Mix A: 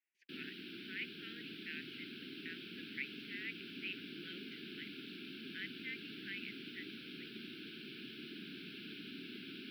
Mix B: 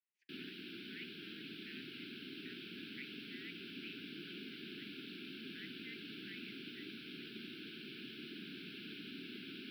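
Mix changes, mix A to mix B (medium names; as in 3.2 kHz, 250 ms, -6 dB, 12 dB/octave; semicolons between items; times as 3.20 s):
speech -10.0 dB; reverb: on, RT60 0.60 s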